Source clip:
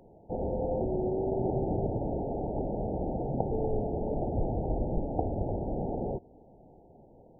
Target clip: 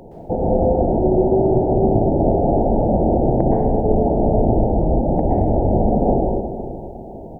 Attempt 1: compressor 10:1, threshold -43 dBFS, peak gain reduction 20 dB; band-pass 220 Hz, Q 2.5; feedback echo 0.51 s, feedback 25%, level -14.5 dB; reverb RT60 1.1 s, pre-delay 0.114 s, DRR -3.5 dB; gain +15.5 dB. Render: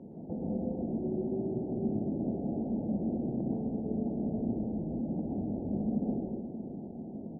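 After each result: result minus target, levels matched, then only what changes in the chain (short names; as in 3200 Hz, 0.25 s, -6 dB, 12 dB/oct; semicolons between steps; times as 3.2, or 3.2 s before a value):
compressor: peak gain reduction +9.5 dB; 250 Hz band +4.5 dB
change: compressor 10:1, threshold -32.5 dBFS, peak gain reduction 10.5 dB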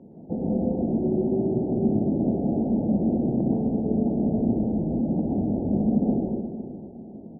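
250 Hz band +4.0 dB
remove: band-pass 220 Hz, Q 2.5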